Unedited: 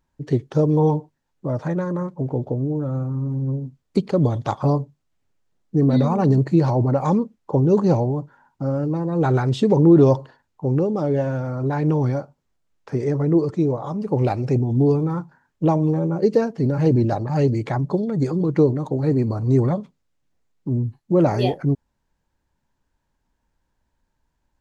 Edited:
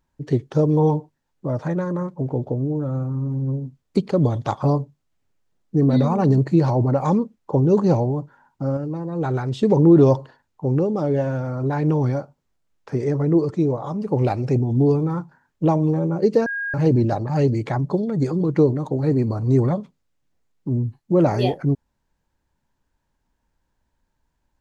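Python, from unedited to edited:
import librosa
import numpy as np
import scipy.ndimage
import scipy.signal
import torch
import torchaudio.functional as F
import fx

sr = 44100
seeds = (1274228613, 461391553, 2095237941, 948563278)

y = fx.edit(x, sr, fx.clip_gain(start_s=8.77, length_s=0.86, db=-4.5),
    fx.bleep(start_s=16.46, length_s=0.28, hz=1630.0, db=-23.5), tone=tone)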